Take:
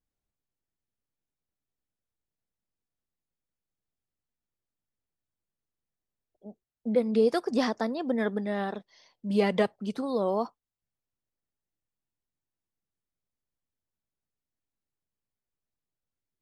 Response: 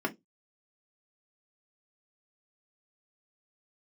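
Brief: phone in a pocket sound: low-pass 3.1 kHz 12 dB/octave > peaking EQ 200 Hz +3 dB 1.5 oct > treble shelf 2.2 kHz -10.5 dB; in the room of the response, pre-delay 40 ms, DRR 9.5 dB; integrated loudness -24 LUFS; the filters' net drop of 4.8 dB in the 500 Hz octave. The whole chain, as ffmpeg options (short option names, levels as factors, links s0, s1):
-filter_complex "[0:a]equalizer=f=500:t=o:g=-6,asplit=2[s0][s1];[1:a]atrim=start_sample=2205,adelay=40[s2];[s1][s2]afir=irnorm=-1:irlink=0,volume=0.15[s3];[s0][s3]amix=inputs=2:normalize=0,lowpass=3100,equalizer=f=200:t=o:w=1.5:g=3,highshelf=f=2200:g=-10.5,volume=1.68"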